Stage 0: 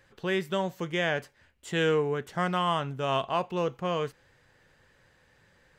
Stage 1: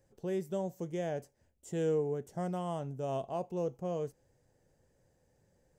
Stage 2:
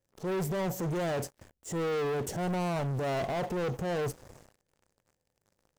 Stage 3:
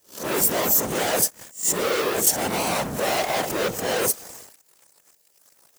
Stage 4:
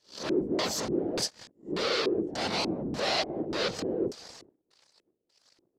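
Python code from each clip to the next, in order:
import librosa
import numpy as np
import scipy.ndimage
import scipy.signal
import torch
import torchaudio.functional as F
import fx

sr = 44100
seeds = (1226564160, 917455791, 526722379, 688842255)

y1 = fx.band_shelf(x, sr, hz=2100.0, db=-16.0, octaves=2.4)
y1 = y1 * 10.0 ** (-5.0 / 20.0)
y2 = fx.rider(y1, sr, range_db=3, speed_s=0.5)
y2 = fx.transient(y2, sr, attack_db=-9, sustain_db=6)
y2 = fx.leveller(y2, sr, passes=5)
y2 = y2 * 10.0 ** (-3.5 / 20.0)
y3 = fx.spec_swells(y2, sr, rise_s=0.3)
y3 = fx.whisperise(y3, sr, seeds[0])
y3 = fx.riaa(y3, sr, side='recording')
y3 = y3 * 10.0 ** (9.0 / 20.0)
y4 = fx.filter_lfo_lowpass(y3, sr, shape='square', hz=1.7, low_hz=340.0, high_hz=4500.0, q=3.6)
y4 = y4 * 10.0 ** (-6.5 / 20.0)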